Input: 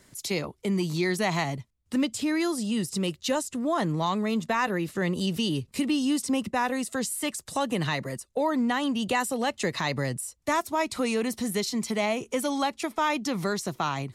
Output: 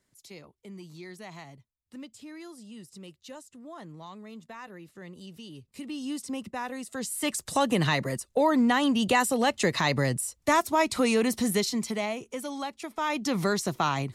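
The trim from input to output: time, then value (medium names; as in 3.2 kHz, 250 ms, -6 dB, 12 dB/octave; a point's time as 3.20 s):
5.51 s -17.5 dB
6.11 s -8 dB
6.86 s -8 dB
7.35 s +3 dB
11.52 s +3 dB
12.30 s -7.5 dB
12.85 s -7.5 dB
13.35 s +2 dB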